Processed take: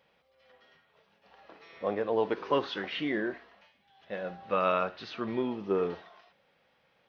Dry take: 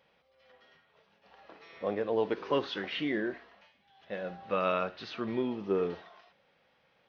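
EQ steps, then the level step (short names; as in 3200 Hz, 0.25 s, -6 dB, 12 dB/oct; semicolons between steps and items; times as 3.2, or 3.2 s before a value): dynamic EQ 1000 Hz, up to +4 dB, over -41 dBFS, Q 0.97; 0.0 dB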